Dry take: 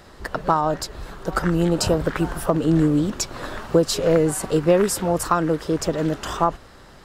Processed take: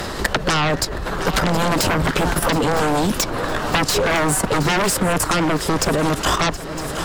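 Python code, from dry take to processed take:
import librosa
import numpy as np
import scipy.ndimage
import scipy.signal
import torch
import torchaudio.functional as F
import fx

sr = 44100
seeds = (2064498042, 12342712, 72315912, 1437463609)

p1 = fx.fold_sine(x, sr, drive_db=16, ceiling_db=-4.5)
p2 = fx.level_steps(p1, sr, step_db=11)
p3 = p2 + fx.echo_swing(p2, sr, ms=958, ratio=3, feedback_pct=39, wet_db=-17, dry=0)
p4 = fx.band_squash(p3, sr, depth_pct=70)
y = F.gain(torch.from_numpy(p4), -7.0).numpy()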